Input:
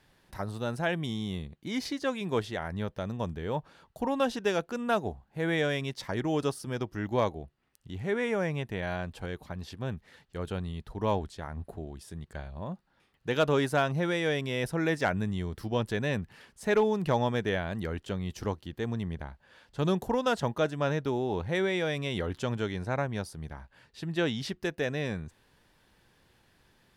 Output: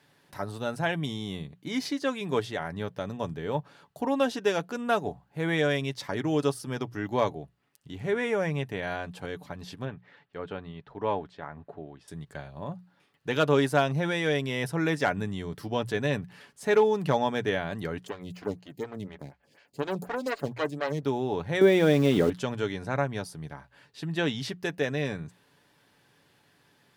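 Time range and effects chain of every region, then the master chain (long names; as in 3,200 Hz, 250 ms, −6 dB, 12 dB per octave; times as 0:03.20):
0:09.85–0:12.08: low-pass filter 2,600 Hz + low-shelf EQ 260 Hz −7.5 dB
0:18.07–0:21.03: lower of the sound and its delayed copy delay 0.43 ms + phaser with staggered stages 4.1 Hz
0:21.61–0:22.30: low-pass filter 8,500 Hz + parametric band 290 Hz +12 dB 2.2 octaves + centre clipping without the shift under −36.5 dBFS
whole clip: high-pass filter 110 Hz; mains-hum notches 60/120/180 Hz; comb filter 7 ms, depth 36%; level +1.5 dB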